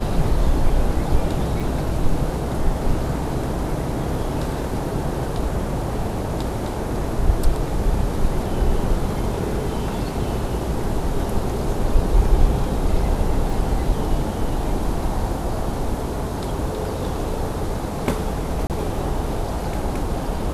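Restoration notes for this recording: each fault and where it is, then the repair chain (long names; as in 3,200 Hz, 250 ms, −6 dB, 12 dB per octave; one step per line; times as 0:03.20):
0:01.60: drop-out 3.1 ms
0:13.50: drop-out 2.7 ms
0:18.67–0:18.70: drop-out 28 ms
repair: repair the gap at 0:01.60, 3.1 ms
repair the gap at 0:13.50, 2.7 ms
repair the gap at 0:18.67, 28 ms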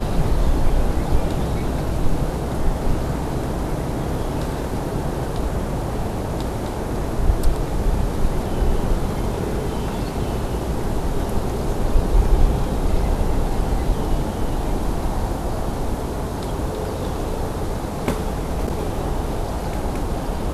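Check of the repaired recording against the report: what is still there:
none of them is left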